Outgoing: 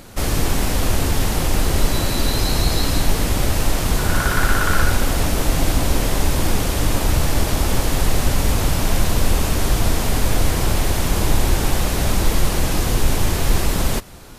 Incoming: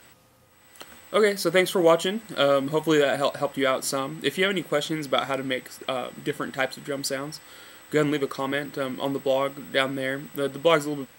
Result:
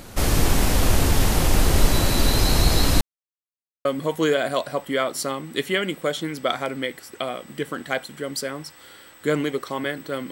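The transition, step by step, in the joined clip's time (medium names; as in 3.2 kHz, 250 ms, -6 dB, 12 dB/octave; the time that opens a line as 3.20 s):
outgoing
3.01–3.85 s: mute
3.85 s: go over to incoming from 2.53 s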